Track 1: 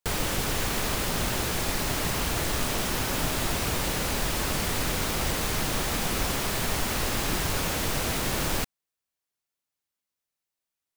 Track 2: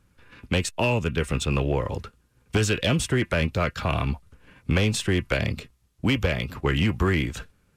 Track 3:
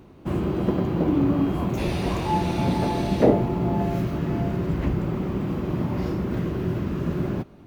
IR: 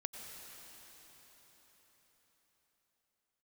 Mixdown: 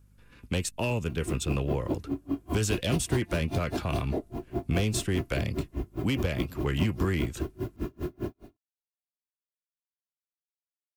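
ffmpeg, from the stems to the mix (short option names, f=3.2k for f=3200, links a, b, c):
-filter_complex "[1:a]aeval=exprs='val(0)+0.002*(sin(2*PI*50*n/s)+sin(2*PI*2*50*n/s)/2+sin(2*PI*3*50*n/s)/3+sin(2*PI*4*50*n/s)/4+sin(2*PI*5*50*n/s)/5)':c=same,volume=-13dB[a];[2:a]aecho=1:1:2.9:0.68,acompressor=threshold=-26dB:ratio=16,aeval=exprs='val(0)*pow(10,-37*(0.5-0.5*cos(2*PI*4.9*n/s))/20)':c=same,adelay=900,volume=-5.5dB[b];[a][b]amix=inputs=2:normalize=0,tiltshelf=f=1.1k:g=8.5,crystalizer=i=8.5:c=0"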